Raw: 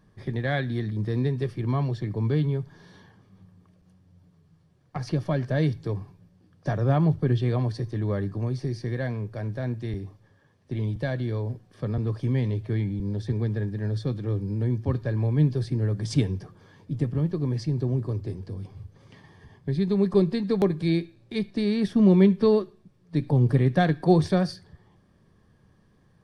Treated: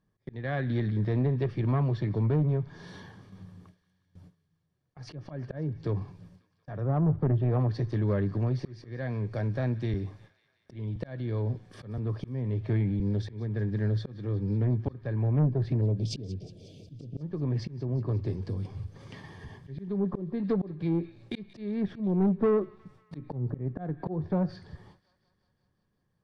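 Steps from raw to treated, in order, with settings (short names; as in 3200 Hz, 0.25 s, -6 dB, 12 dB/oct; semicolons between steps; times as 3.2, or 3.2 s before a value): treble ducked by the level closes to 930 Hz, closed at -18.5 dBFS; 15.81–17.21 Chebyshev band-stop 670–2500 Hz, order 4; auto swell 0.467 s; gate with hold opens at -48 dBFS; in parallel at -1 dB: compressor, threshold -40 dBFS, peak gain reduction 22 dB; on the sum: soft clip -19 dBFS, distortion -14 dB; on a send: thin delay 0.181 s, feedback 67%, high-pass 1600 Hz, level -17.5 dB; on the sum: Doppler distortion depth 0.12 ms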